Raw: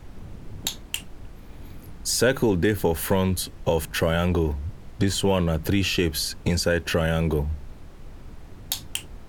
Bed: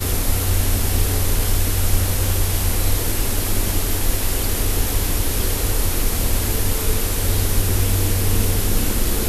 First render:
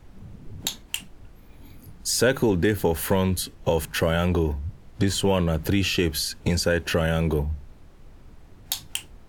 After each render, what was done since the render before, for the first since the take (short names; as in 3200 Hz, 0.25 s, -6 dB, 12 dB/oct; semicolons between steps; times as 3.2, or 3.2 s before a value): noise print and reduce 6 dB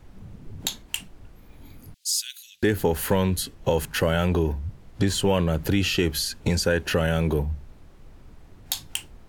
1.94–2.63 inverse Chebyshev high-pass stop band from 920 Hz, stop band 60 dB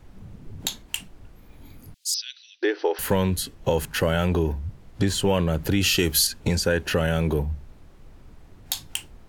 2.14–2.99 brick-wall FIR band-pass 300–6100 Hz; 5.81–6.27 high shelf 4600 Hz +11.5 dB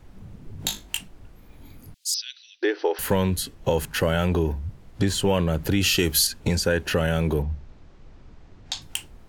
0.57–0.98 flutter echo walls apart 3.4 m, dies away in 0.23 s; 7.42–8.82 LPF 6700 Hz 24 dB/oct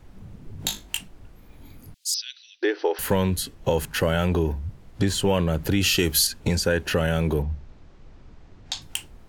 nothing audible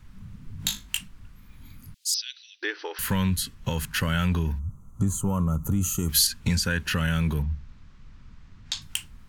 4.59–6.09 spectral gain 1400–5900 Hz -22 dB; band shelf 500 Hz -13 dB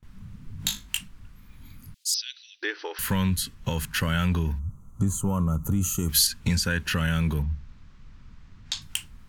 gate with hold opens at -44 dBFS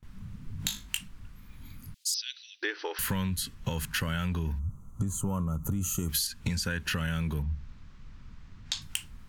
compressor 6:1, threshold -27 dBFS, peak gain reduction 10.5 dB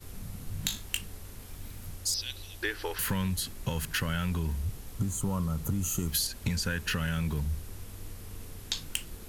add bed -26.5 dB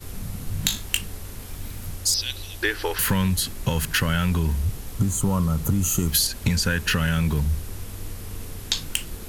gain +8.5 dB; limiter -3 dBFS, peak gain reduction 1.5 dB